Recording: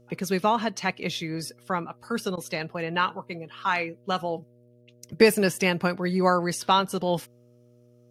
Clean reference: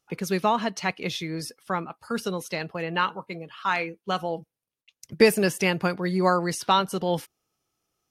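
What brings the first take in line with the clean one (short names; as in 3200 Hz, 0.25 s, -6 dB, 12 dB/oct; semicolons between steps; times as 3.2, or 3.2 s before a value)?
de-hum 120.9 Hz, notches 5; interpolate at 2.36, 12 ms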